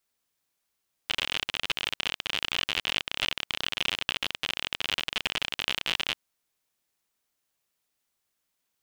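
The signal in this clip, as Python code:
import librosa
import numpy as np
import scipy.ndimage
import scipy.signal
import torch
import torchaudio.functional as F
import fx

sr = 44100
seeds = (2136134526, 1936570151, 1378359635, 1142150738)

y = fx.geiger_clicks(sr, seeds[0], length_s=5.08, per_s=57.0, level_db=-11.5)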